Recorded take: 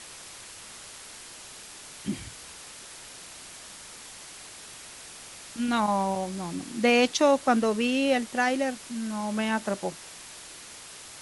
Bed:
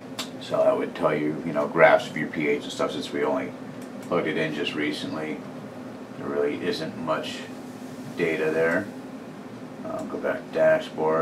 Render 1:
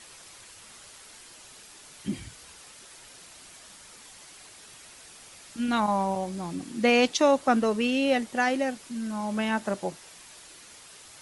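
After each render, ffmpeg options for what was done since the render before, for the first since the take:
-af "afftdn=nr=6:nf=-45"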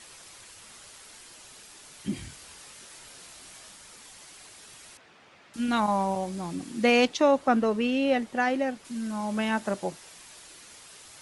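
-filter_complex "[0:a]asettb=1/sr,asplit=3[s0][s1][s2];[s0]atrim=end=2.144[s3];[s1]atrim=start=2.14:end=3.71,asetpts=PTS-STARTPTS,afade=t=in:d=0.004:c=qsin,afade=t=out:st=1.566:d=0.004:c=qsin,asplit=2[s4][s5];[s5]adelay=22,volume=0.562[s6];[s4][s6]amix=inputs=2:normalize=0,atrim=end_sample=69237[s7];[s2]atrim=start=3.706[s8];[s3][s7]acrossfade=d=0.004:c1=hsin:c2=qsin[s9];[s9][s8]acrossfade=d=0.004:c1=qsin:c2=hsin,asettb=1/sr,asplit=3[s10][s11][s12];[s10]atrim=end=4.974[s13];[s11]atrim=start=4.97:end=5.54,asetpts=PTS-STARTPTS,afade=t=in:d=0.004:c=qsin,afade=t=out:st=0.566:d=0.004:c=qsin,highpass=120,lowpass=2400[s14];[s12]atrim=start=5.536[s15];[s13][s14]acrossfade=d=0.004:c1=hsin:c2=qsin[s16];[s16][s15]acrossfade=d=0.004:c1=qsin:c2=hsin,asettb=1/sr,asplit=3[s17][s18][s19];[s17]atrim=end=7.054[s20];[s18]atrim=start=7.05:end=8.85,asetpts=PTS-STARTPTS,afade=t=in:d=0.004:c=qsin,afade=t=out:st=1.796:d=0.004:c=qsin,highshelf=f=4200:g=-10[s21];[s19]atrim=start=8.846[s22];[s20][s21]acrossfade=d=0.004:c1=hsin:c2=qsin[s23];[s23][s22]acrossfade=d=0.004:c1=qsin:c2=hsin"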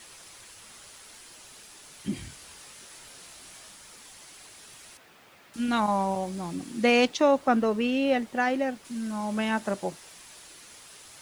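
-af "acrusher=bits=9:mix=0:aa=0.000001"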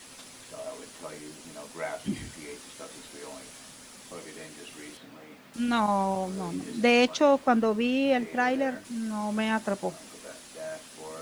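-filter_complex "[1:a]volume=0.112[s0];[0:a][s0]amix=inputs=2:normalize=0"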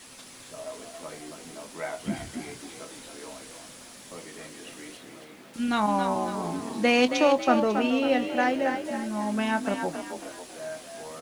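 -filter_complex "[0:a]asplit=2[s0][s1];[s1]adelay=24,volume=0.237[s2];[s0][s2]amix=inputs=2:normalize=0,asplit=6[s3][s4][s5][s6][s7][s8];[s4]adelay=273,afreqshift=39,volume=0.447[s9];[s5]adelay=546,afreqshift=78,volume=0.188[s10];[s6]adelay=819,afreqshift=117,volume=0.0785[s11];[s7]adelay=1092,afreqshift=156,volume=0.0331[s12];[s8]adelay=1365,afreqshift=195,volume=0.014[s13];[s3][s9][s10][s11][s12][s13]amix=inputs=6:normalize=0"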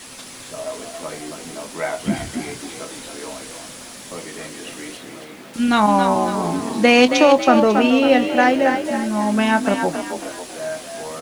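-af "volume=2.99,alimiter=limit=0.794:level=0:latency=1"

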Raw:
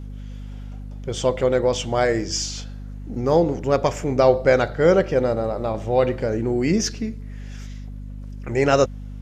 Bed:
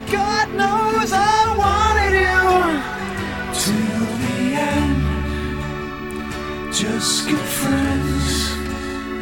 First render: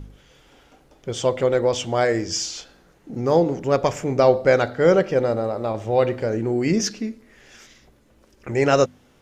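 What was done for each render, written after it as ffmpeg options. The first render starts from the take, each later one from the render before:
-af "bandreject=f=50:t=h:w=4,bandreject=f=100:t=h:w=4,bandreject=f=150:t=h:w=4,bandreject=f=200:t=h:w=4,bandreject=f=250:t=h:w=4"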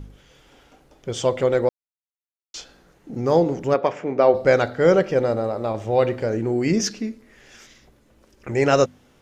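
-filter_complex "[0:a]asplit=3[s0][s1][s2];[s0]afade=t=out:st=3.73:d=0.02[s3];[s1]highpass=240,lowpass=2700,afade=t=in:st=3.73:d=0.02,afade=t=out:st=4.33:d=0.02[s4];[s2]afade=t=in:st=4.33:d=0.02[s5];[s3][s4][s5]amix=inputs=3:normalize=0,asplit=3[s6][s7][s8];[s6]atrim=end=1.69,asetpts=PTS-STARTPTS,afade=t=out:st=1.686:d=0.004:c=hsin[s9];[s7]atrim=start=1.69:end=2.54,asetpts=PTS-STARTPTS,volume=0[s10];[s8]atrim=start=2.54,asetpts=PTS-STARTPTS,afade=t=in:d=0.004:c=hsin[s11];[s9][s10][s11]concat=n=3:v=0:a=1"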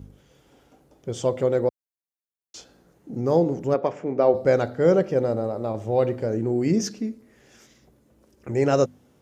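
-af "highpass=72,equalizer=f=2500:w=0.37:g=-9.5"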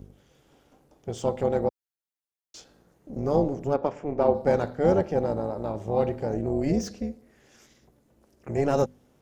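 -filter_complex "[0:a]tremolo=f=290:d=0.71,acrossover=split=1200[s0][s1];[s1]asoftclip=type=tanh:threshold=0.0211[s2];[s0][s2]amix=inputs=2:normalize=0"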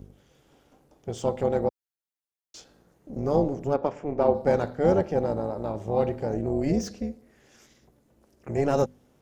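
-af anull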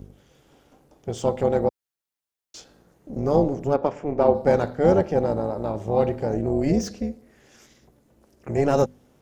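-af "volume=1.5"

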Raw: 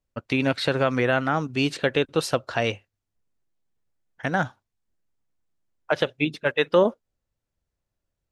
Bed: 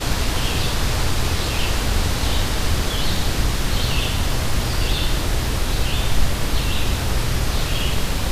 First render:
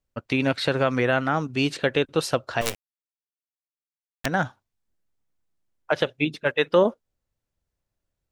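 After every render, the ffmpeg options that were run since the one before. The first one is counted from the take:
-filter_complex "[0:a]asettb=1/sr,asplit=3[s0][s1][s2];[s0]atrim=end=2.614[s3];[s1]atrim=start=2.61:end=4.26,asetpts=PTS-STARTPTS,afade=t=in:d=0.004:c=qsin,afade=t=out:st=1.646:d=0.004:c=qsin,acrusher=bits=3:dc=4:mix=0:aa=0.000001[s4];[s2]atrim=start=4.256[s5];[s3][s4]acrossfade=d=0.004:c1=hsin:c2=qsin[s6];[s6][s5]acrossfade=d=0.004:c1=qsin:c2=hsin"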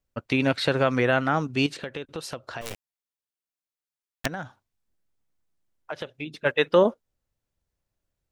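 -filter_complex "[0:a]asettb=1/sr,asplit=3[s0][s1][s2];[s0]atrim=end=1.664[s3];[s1]atrim=start=1.66:end=2.71,asetpts=PTS-STARTPTS,afade=t=in:d=0.004:c=qsin,afade=t=out:st=1.046:d=0.004:c=qsin,acompressor=threshold=0.02:ratio=3:attack=3.2:release=140:knee=1:detection=peak[s4];[s2]atrim=start=2.706[s5];[s3][s4]acrossfade=d=0.004:c1=hsin:c2=qsin[s6];[s6][s5]acrossfade=d=0.004:c1=qsin:c2=hsin,asettb=1/sr,asplit=3[s7][s8][s9];[s7]atrim=end=4.274[s10];[s8]atrim=start=4.27:end=6.39,asetpts=PTS-STARTPTS,afade=t=in:d=0.004:c=qsin,afade=t=out:st=2.116:d=0.004:c=qsin,acompressor=threshold=0.0126:ratio=2:attack=3.2:release=140:knee=1:detection=peak[s11];[s9]atrim=start=6.386[s12];[s10][s11]acrossfade=d=0.004:c1=hsin:c2=qsin[s13];[s13][s12]acrossfade=d=0.004:c1=qsin:c2=hsin"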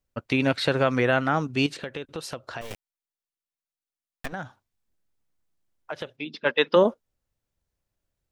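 -filter_complex "[0:a]asettb=1/sr,asplit=3[s0][s1][s2];[s0]atrim=end=2.634[s3];[s1]atrim=start=2.63:end=4.33,asetpts=PTS-STARTPTS,afade=t=in:d=0.004:c=qsin,afade=t=out:st=1.696:d=0.004:c=qsin,aeval=exprs='max(val(0),0)':c=same[s4];[s2]atrim=start=4.326[s5];[s3][s4]acrossfade=d=0.004:c1=hsin:c2=qsin[s6];[s6][s5]acrossfade=d=0.004:c1=qsin:c2=hsin,asplit=3[s7][s8][s9];[s7]afade=t=out:st=6.16:d=0.02[s10];[s8]highpass=210,equalizer=f=230:t=q:w=4:g=8,equalizer=f=680:t=q:w=4:g=-3,equalizer=f=980:t=q:w=4:g=5,equalizer=f=3300:t=q:w=4:g=4,equalizer=f=5000:t=q:w=4:g=9,lowpass=f=5300:w=0.5412,lowpass=f=5300:w=1.3066,afade=t=in:st=6.16:d=0.02,afade=t=out:st=6.75:d=0.02[s11];[s9]afade=t=in:st=6.75:d=0.02[s12];[s10][s11][s12]amix=inputs=3:normalize=0"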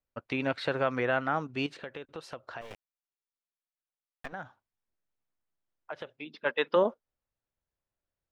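-af "lowpass=f=1200:p=1,lowshelf=f=490:g=-11.5"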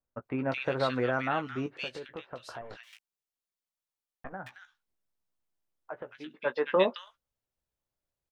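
-filter_complex "[0:a]asplit=2[s0][s1];[s1]adelay=16,volume=0.355[s2];[s0][s2]amix=inputs=2:normalize=0,acrossover=split=1800[s3][s4];[s4]adelay=220[s5];[s3][s5]amix=inputs=2:normalize=0"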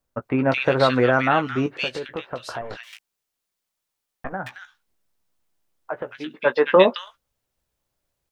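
-af "volume=3.55,alimiter=limit=0.794:level=0:latency=1"

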